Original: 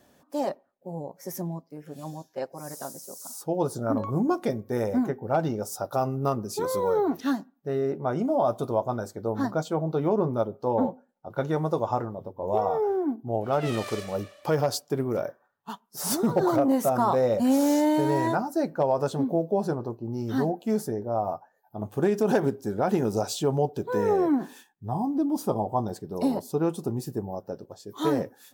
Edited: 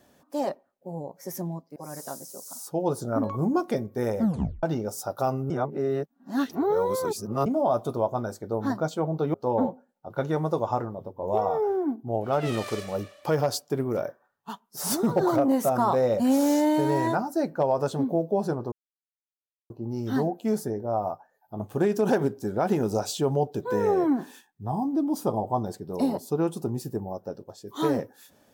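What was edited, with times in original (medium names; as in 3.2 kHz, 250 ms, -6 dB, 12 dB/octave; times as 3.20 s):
1.76–2.50 s: delete
4.93 s: tape stop 0.44 s
6.24–8.20 s: reverse
10.08–10.54 s: delete
19.92 s: insert silence 0.98 s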